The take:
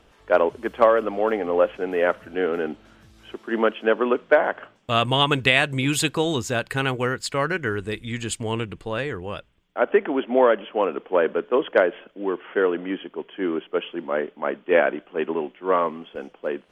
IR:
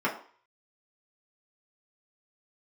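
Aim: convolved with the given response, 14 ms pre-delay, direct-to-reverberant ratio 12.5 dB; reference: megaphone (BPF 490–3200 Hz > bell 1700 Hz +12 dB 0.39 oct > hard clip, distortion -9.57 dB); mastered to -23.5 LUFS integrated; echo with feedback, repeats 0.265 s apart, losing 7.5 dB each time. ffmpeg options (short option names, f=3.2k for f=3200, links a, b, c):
-filter_complex "[0:a]aecho=1:1:265|530|795|1060|1325:0.422|0.177|0.0744|0.0312|0.0131,asplit=2[a][b];[1:a]atrim=start_sample=2205,adelay=14[c];[b][c]afir=irnorm=-1:irlink=0,volume=-24dB[d];[a][d]amix=inputs=2:normalize=0,highpass=490,lowpass=3.2k,equalizer=f=1.7k:t=o:w=0.39:g=12,asoftclip=type=hard:threshold=-15dB"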